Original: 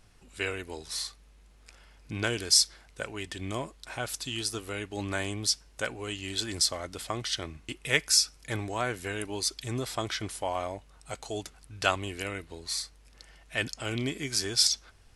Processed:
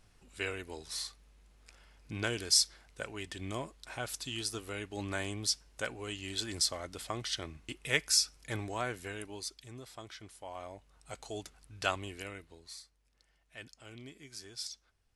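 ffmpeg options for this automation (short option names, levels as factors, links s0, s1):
-af "volume=1.78,afade=t=out:st=8.74:d=0.96:silence=0.281838,afade=t=in:st=10.38:d=0.83:silence=0.334965,afade=t=out:st=11.97:d=0.87:silence=0.251189"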